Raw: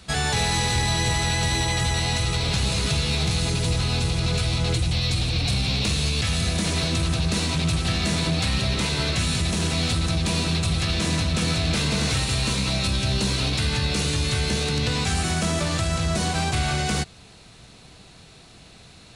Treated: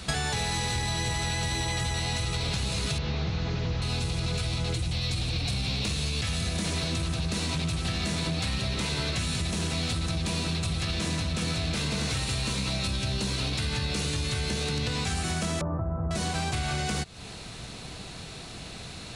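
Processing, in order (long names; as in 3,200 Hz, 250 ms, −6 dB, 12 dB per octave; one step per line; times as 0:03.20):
0:02.98–0:03.82: linear delta modulator 32 kbit/s, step −37 dBFS
0:15.61–0:16.11: Butterworth low-pass 1,200 Hz 36 dB per octave
downward compressor 8 to 1, threshold −34 dBFS, peak gain reduction 14.5 dB
level +7 dB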